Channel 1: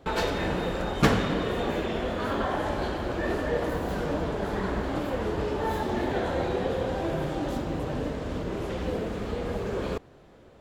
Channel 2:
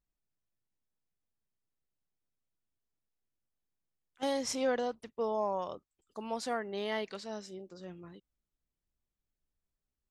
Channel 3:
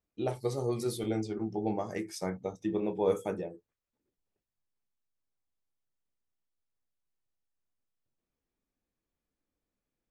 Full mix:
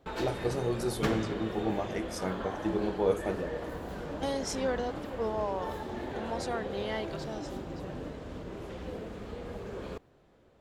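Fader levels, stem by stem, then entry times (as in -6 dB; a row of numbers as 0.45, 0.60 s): -9.5, -0.5, +0.5 dB; 0.00, 0.00, 0.00 s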